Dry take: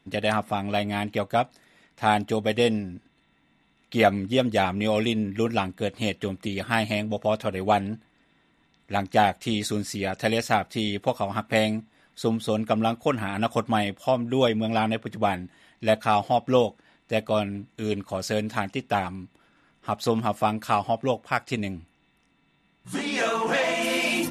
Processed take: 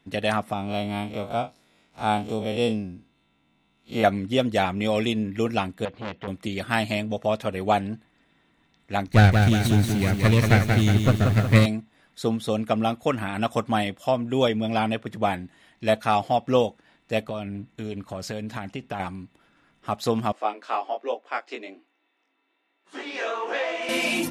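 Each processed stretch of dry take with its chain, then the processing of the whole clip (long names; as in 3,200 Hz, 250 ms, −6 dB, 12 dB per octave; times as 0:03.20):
0:00.53–0:04.04: spectrum smeared in time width 81 ms + parametric band 1,800 Hz −13.5 dB 0.22 octaves
0:05.85–0:06.28: high-frequency loss of the air 240 metres + saturating transformer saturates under 1,700 Hz
0:09.07–0:11.66: lower of the sound and its delayed copy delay 0.48 ms + parametric band 99 Hz +12.5 dB 1.6 octaves + feedback echo at a low word length 181 ms, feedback 55%, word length 7 bits, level −4.5 dB
0:17.23–0:19.00: bass and treble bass +3 dB, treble −4 dB + downward compressor 4 to 1, threshold −28 dBFS
0:20.32–0:23.89: Butterworth high-pass 310 Hz + chorus effect 1.2 Hz, delay 17 ms, depth 5.5 ms + high-frequency loss of the air 120 metres
whole clip: no processing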